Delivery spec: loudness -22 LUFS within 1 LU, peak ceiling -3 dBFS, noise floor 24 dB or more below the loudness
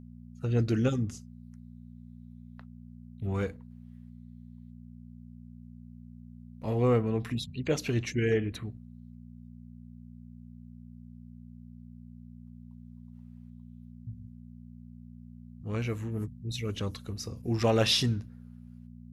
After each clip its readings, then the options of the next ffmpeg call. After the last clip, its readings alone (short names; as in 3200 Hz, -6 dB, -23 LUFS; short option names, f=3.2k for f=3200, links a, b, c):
hum 60 Hz; harmonics up to 240 Hz; hum level -45 dBFS; loudness -30.5 LUFS; peak -12.5 dBFS; loudness target -22.0 LUFS
-> -af "bandreject=f=60:t=h:w=4,bandreject=f=120:t=h:w=4,bandreject=f=180:t=h:w=4,bandreject=f=240:t=h:w=4"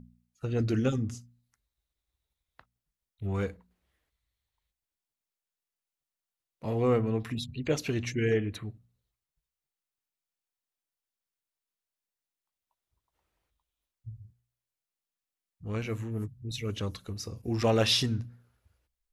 hum none; loudness -31.0 LUFS; peak -12.5 dBFS; loudness target -22.0 LUFS
-> -af "volume=9dB"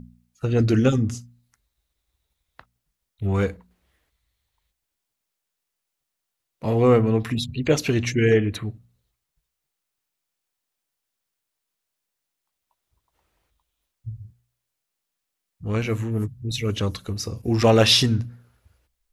loudness -22.0 LUFS; peak -3.5 dBFS; noise floor -82 dBFS